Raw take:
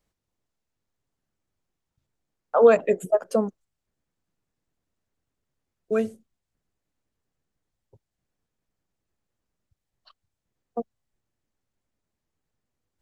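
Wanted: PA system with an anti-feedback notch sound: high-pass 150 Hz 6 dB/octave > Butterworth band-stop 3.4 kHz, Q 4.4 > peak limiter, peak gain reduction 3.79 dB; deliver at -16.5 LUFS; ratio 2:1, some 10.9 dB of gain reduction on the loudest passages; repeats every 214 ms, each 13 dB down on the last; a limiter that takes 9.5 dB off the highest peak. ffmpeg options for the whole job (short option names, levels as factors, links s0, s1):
-af "acompressor=threshold=0.0316:ratio=2,alimiter=level_in=1.06:limit=0.0631:level=0:latency=1,volume=0.944,highpass=f=150:p=1,asuperstop=centerf=3400:order=8:qfactor=4.4,aecho=1:1:214|428|642:0.224|0.0493|0.0108,volume=15,alimiter=limit=0.631:level=0:latency=1"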